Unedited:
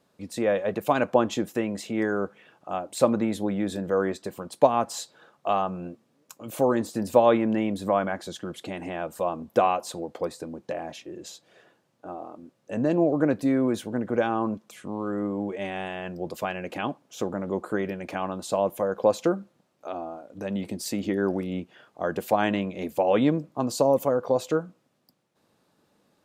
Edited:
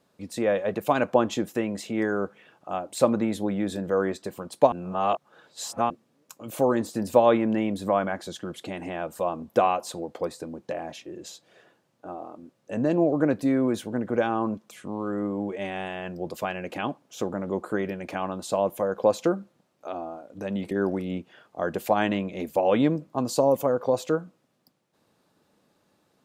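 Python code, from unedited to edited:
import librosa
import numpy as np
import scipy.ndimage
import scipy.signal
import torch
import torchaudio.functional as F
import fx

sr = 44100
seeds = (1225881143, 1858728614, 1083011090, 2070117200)

y = fx.edit(x, sr, fx.reverse_span(start_s=4.72, length_s=1.18),
    fx.cut(start_s=20.71, length_s=0.42), tone=tone)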